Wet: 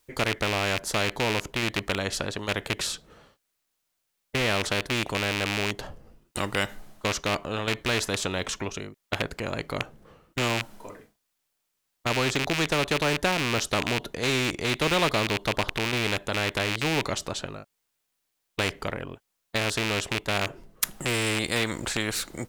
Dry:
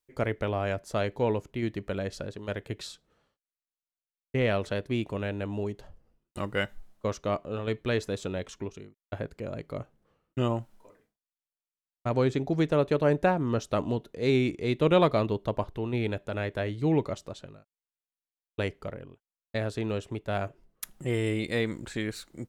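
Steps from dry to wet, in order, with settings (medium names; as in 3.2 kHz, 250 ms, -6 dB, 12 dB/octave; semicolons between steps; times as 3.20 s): rattle on loud lows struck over -34 dBFS, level -23 dBFS; spectrum-flattening compressor 2:1; trim +7 dB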